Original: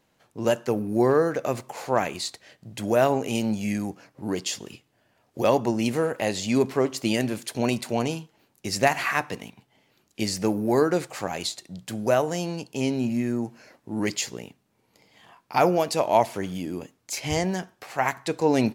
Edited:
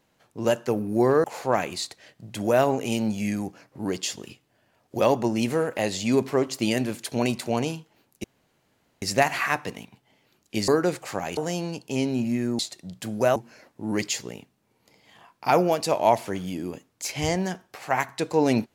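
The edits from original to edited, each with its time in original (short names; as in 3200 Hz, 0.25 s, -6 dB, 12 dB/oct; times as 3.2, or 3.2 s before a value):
1.24–1.67 cut
8.67 insert room tone 0.78 s
10.33–10.76 cut
11.45–12.22 move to 13.44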